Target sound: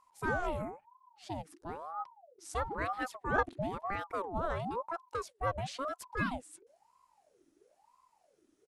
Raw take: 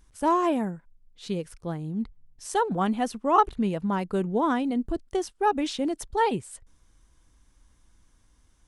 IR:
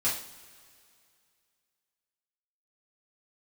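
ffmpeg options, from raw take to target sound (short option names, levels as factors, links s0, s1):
-filter_complex "[0:a]asplit=2[s0][s1];[s1]asetrate=33038,aresample=44100,atempo=1.33484,volume=0.141[s2];[s0][s2]amix=inputs=2:normalize=0,aeval=exprs='val(0)*sin(2*PI*670*n/s+670*0.55/1*sin(2*PI*1*n/s))':c=same,volume=0.422"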